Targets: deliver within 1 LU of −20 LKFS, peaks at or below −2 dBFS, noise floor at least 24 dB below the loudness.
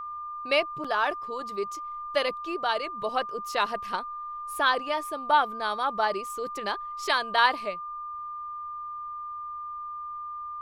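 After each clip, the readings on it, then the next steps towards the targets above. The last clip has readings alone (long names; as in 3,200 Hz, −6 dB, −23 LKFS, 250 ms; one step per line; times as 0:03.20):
number of dropouts 1; longest dropout 5.2 ms; interfering tone 1,200 Hz; level of the tone −34 dBFS; integrated loudness −29.0 LKFS; sample peak −8.5 dBFS; target loudness −20.0 LKFS
→ repair the gap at 0:00.84, 5.2 ms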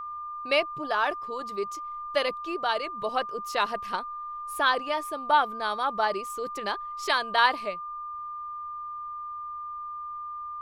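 number of dropouts 0; interfering tone 1,200 Hz; level of the tone −34 dBFS
→ notch filter 1,200 Hz, Q 30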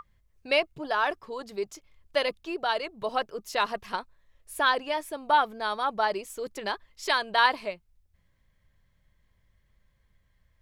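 interfering tone none found; integrated loudness −28.5 LKFS; sample peak −8.0 dBFS; target loudness −20.0 LKFS
→ level +8.5 dB
brickwall limiter −2 dBFS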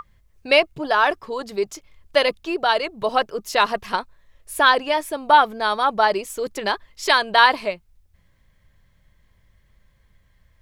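integrated loudness −20.0 LKFS; sample peak −2.0 dBFS; background noise floor −60 dBFS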